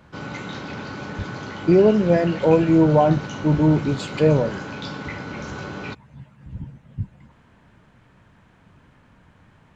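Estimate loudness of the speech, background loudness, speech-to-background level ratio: -18.5 LUFS, -33.0 LUFS, 14.5 dB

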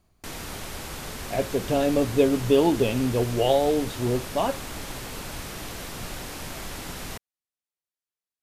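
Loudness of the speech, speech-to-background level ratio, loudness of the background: -24.0 LUFS, 11.5 dB, -35.5 LUFS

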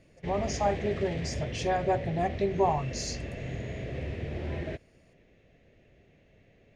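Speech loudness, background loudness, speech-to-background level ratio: -30.5 LUFS, -37.0 LUFS, 6.5 dB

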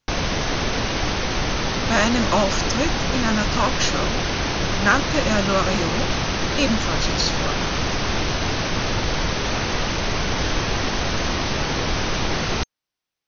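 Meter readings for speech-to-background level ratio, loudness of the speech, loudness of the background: -0.5 dB, -23.5 LUFS, -23.0 LUFS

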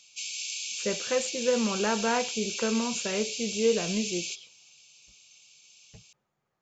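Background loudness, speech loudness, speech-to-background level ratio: -33.0 LUFS, -29.5 LUFS, 3.5 dB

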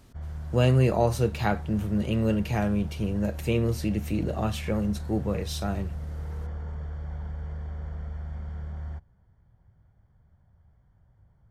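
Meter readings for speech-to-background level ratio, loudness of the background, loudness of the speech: 10.5 dB, -37.5 LUFS, -27.0 LUFS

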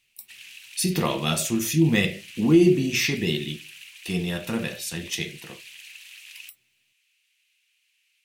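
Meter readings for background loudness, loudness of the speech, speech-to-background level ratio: -42.5 LUFS, -24.0 LUFS, 18.5 dB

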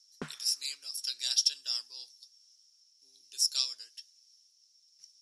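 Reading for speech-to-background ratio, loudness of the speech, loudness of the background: 16.5 dB, -30.5 LUFS, -47.0 LUFS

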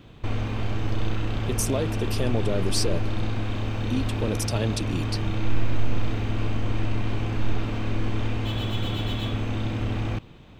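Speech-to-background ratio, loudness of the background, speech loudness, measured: -1.0 dB, -29.0 LUFS, -30.0 LUFS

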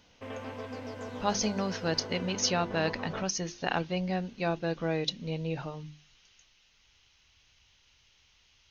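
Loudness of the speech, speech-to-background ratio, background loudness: -32.0 LUFS, 9.0 dB, -41.0 LUFS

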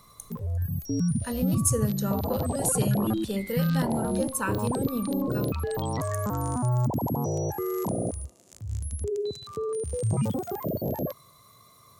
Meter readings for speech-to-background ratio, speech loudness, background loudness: -0.5 dB, -30.0 LUFS, -29.5 LUFS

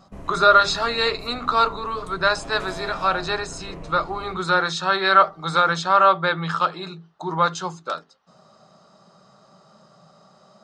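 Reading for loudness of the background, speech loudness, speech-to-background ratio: -39.5 LUFS, -20.5 LUFS, 19.0 dB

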